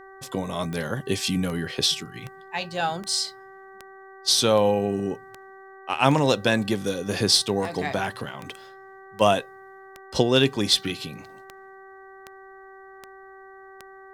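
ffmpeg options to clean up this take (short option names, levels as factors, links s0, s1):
-af "adeclick=t=4,bandreject=f=385.3:t=h:w=4,bandreject=f=770.6:t=h:w=4,bandreject=f=1155.9:t=h:w=4,bandreject=f=1541.2:t=h:w=4,bandreject=f=1926.5:t=h:w=4"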